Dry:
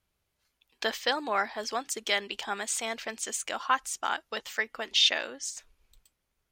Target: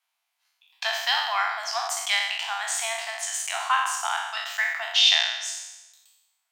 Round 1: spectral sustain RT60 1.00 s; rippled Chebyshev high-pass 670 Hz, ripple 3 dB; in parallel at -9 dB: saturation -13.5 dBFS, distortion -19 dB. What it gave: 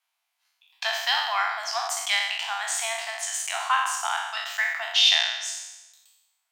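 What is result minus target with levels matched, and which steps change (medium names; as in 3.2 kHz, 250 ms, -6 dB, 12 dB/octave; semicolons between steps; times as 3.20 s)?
saturation: distortion +16 dB
change: saturation -3 dBFS, distortion -35 dB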